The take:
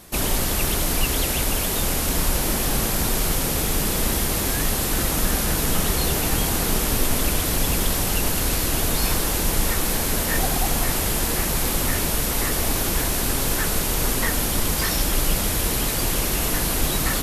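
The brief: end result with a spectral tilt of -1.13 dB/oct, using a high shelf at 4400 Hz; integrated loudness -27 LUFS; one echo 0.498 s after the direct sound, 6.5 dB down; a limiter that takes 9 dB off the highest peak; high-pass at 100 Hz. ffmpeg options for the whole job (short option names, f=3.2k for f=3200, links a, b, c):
-af "highpass=100,highshelf=f=4.4k:g=8.5,alimiter=limit=-13.5dB:level=0:latency=1,aecho=1:1:498:0.473,volume=-7.5dB"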